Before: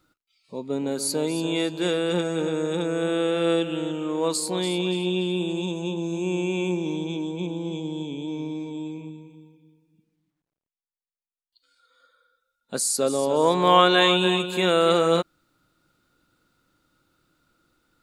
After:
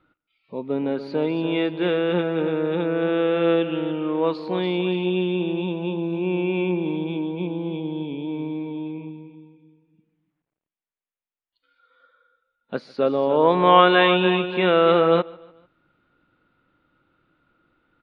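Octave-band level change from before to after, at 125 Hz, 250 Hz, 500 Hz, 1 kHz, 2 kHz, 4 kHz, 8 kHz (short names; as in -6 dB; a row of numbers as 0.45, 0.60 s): +2.0 dB, +2.5 dB, +3.0 dB, +3.0 dB, +2.5 dB, -3.0 dB, under -40 dB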